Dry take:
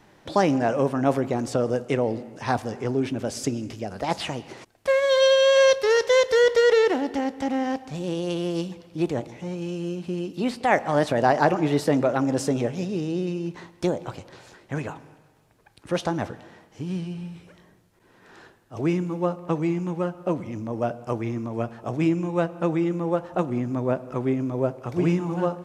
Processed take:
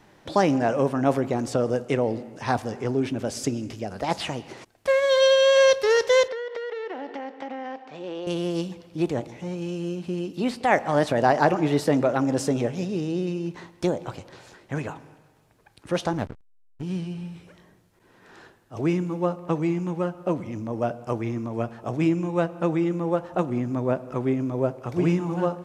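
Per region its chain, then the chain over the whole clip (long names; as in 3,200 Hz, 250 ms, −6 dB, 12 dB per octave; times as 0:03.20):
0:06.28–0:08.27: band-pass filter 400–2,900 Hz + downward compressor 16 to 1, threshold −28 dBFS
0:16.13–0:16.83: parametric band 77 Hz +5 dB + slack as between gear wheels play −27 dBFS
whole clip: no processing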